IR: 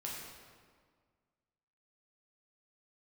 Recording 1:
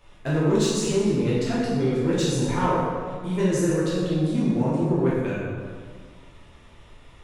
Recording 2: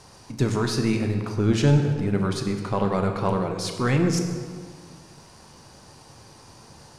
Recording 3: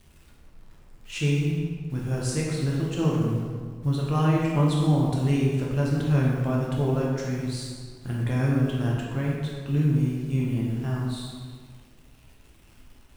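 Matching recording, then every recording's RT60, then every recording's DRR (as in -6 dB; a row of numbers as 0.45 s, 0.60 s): 3; 1.8 s, 1.8 s, 1.8 s; -9.0 dB, 3.5 dB, -4.5 dB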